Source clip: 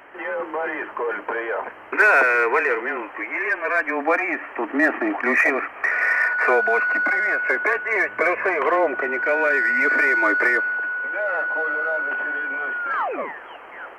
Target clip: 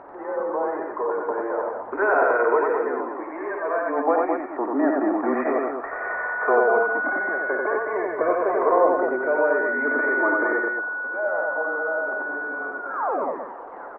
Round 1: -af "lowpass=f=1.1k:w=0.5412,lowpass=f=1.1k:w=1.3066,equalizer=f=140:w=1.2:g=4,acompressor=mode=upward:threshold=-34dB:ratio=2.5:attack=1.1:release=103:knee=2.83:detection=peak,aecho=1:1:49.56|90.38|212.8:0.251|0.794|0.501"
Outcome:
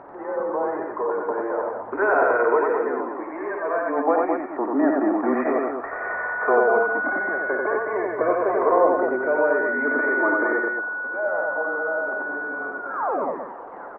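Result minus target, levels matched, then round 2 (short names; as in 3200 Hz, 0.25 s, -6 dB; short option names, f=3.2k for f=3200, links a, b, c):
125 Hz band +5.0 dB
-af "lowpass=f=1.1k:w=0.5412,lowpass=f=1.1k:w=1.3066,equalizer=f=140:w=1.2:g=-4,acompressor=mode=upward:threshold=-34dB:ratio=2.5:attack=1.1:release=103:knee=2.83:detection=peak,aecho=1:1:49.56|90.38|212.8:0.251|0.794|0.501"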